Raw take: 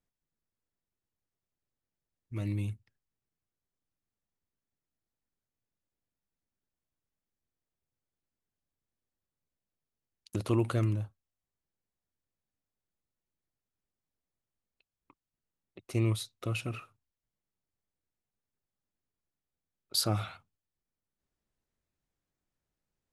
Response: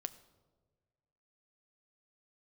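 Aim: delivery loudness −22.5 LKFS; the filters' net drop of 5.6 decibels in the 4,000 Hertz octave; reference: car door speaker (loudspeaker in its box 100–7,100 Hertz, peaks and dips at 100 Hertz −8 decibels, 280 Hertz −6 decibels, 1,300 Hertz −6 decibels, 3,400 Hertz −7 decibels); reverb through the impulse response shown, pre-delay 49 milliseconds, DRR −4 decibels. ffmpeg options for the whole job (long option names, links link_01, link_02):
-filter_complex "[0:a]equalizer=frequency=4000:width_type=o:gain=-5,asplit=2[link_01][link_02];[1:a]atrim=start_sample=2205,adelay=49[link_03];[link_02][link_03]afir=irnorm=-1:irlink=0,volume=6.5dB[link_04];[link_01][link_04]amix=inputs=2:normalize=0,highpass=100,equalizer=frequency=100:width_type=q:width=4:gain=-8,equalizer=frequency=280:width_type=q:width=4:gain=-6,equalizer=frequency=1300:width_type=q:width=4:gain=-6,equalizer=frequency=3400:width_type=q:width=4:gain=-7,lowpass=frequency=7100:width=0.5412,lowpass=frequency=7100:width=1.3066,volume=10.5dB"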